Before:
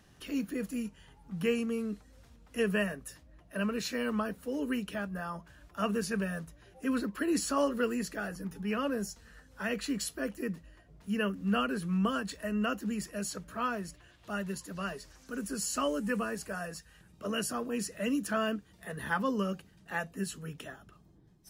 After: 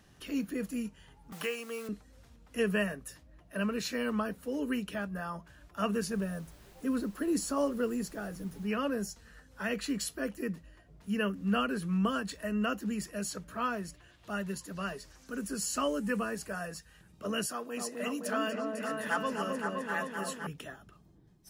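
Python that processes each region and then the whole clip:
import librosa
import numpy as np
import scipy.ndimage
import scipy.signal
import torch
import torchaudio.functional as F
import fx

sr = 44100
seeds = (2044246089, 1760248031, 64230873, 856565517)

y = fx.chain(x, sr, fx.block_float(bits=5),
    fx.highpass(hz=590.0, slope=12),
    fx.band_squash(depth_pct=70), at=(1.32, 1.89))
y = fx.peak_eq(y, sr, hz=2300.0, db=-8.5, octaves=2.0, at=(6.07, 8.67), fade=0.02)
y = fx.dmg_noise_colour(y, sr, seeds[0], colour='pink', level_db=-59.0, at=(6.07, 8.67), fade=0.02)
y = fx.chain(y, sr, fx.highpass(hz=550.0, slope=6),
    fx.echo_opening(ms=258, hz=750, octaves=1, feedback_pct=70, wet_db=0), at=(17.46, 20.47))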